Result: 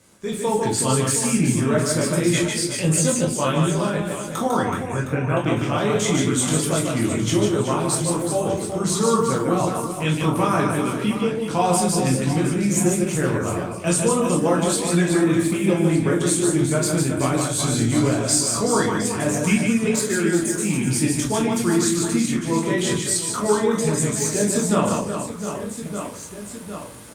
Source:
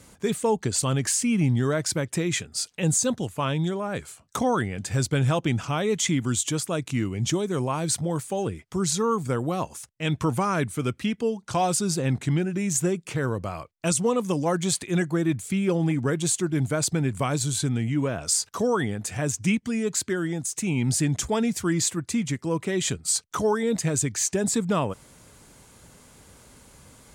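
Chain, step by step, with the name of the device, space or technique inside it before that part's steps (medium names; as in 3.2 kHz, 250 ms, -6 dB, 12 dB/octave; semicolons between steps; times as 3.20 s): 4.64–5.37 s: Chebyshev low-pass 2.8 kHz, order 8; reverse bouncing-ball echo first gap 150 ms, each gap 1.5×, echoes 5; far-field microphone of a smart speaker (reverberation RT60 0.35 s, pre-delay 13 ms, DRR -1 dB; high-pass 98 Hz 12 dB/octave; level rider gain up to 12 dB; trim -5.5 dB; Opus 48 kbps 48 kHz)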